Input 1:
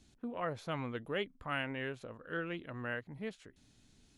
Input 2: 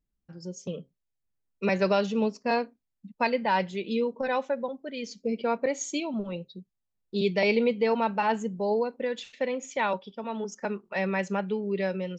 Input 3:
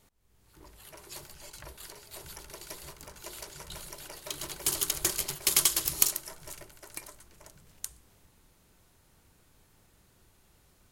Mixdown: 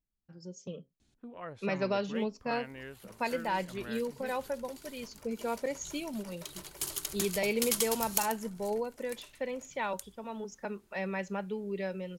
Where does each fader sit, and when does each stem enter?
-6.0 dB, -7.0 dB, -7.0 dB; 1.00 s, 0.00 s, 2.15 s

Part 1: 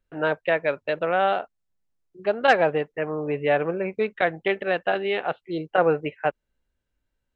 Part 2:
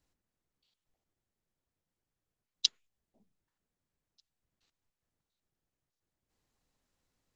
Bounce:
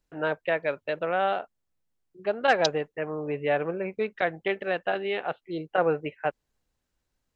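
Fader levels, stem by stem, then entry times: -4.0 dB, -1.0 dB; 0.00 s, 0.00 s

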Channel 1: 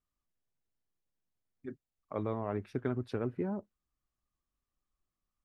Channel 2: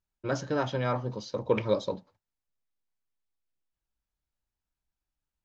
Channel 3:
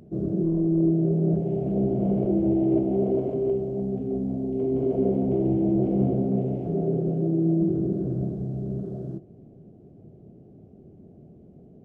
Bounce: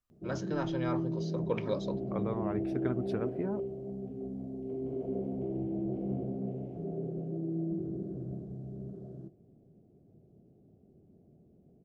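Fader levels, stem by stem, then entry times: -0.5 dB, -7.0 dB, -12.0 dB; 0.00 s, 0.00 s, 0.10 s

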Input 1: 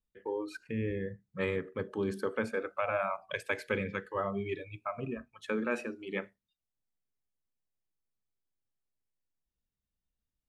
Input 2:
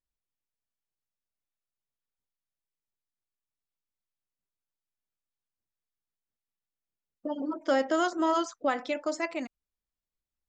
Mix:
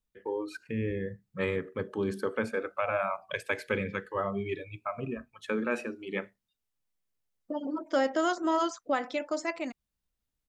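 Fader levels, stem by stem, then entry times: +2.0 dB, -1.0 dB; 0.00 s, 0.25 s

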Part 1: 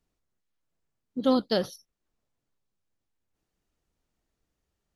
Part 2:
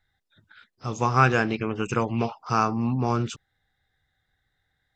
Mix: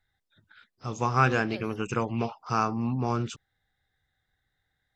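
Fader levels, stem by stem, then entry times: -16.5 dB, -3.5 dB; 0.00 s, 0.00 s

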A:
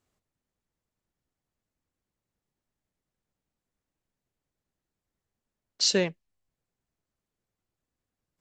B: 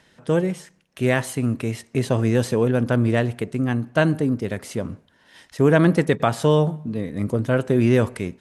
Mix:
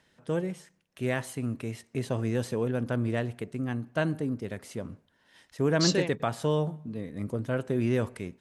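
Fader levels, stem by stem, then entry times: -4.0 dB, -9.5 dB; 0.00 s, 0.00 s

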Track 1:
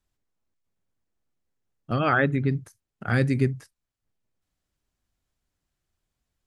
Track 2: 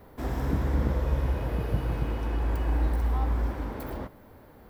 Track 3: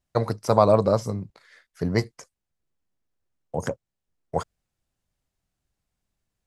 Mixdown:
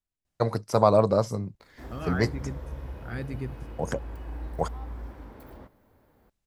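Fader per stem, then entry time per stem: -13.0 dB, -11.0 dB, -2.0 dB; 0.00 s, 1.60 s, 0.25 s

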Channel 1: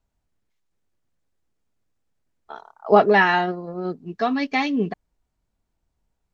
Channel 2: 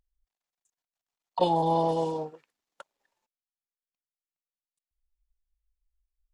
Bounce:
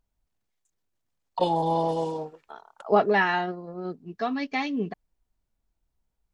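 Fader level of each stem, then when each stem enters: -6.0 dB, 0.0 dB; 0.00 s, 0.00 s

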